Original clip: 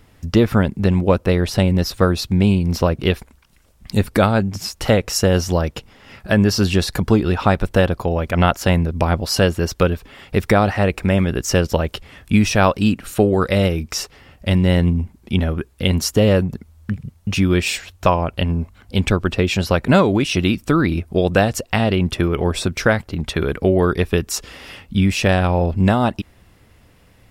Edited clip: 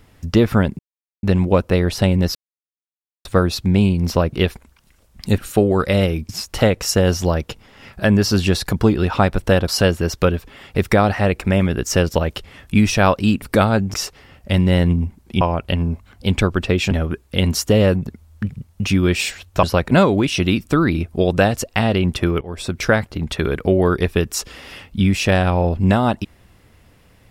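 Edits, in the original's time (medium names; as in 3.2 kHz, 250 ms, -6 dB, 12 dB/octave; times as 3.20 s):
0.79 s: insert silence 0.44 s
1.91 s: insert silence 0.90 s
4.04–4.56 s: swap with 13.00–13.91 s
7.95–9.26 s: delete
18.10–19.60 s: move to 15.38 s
22.38–22.81 s: fade in, from -22.5 dB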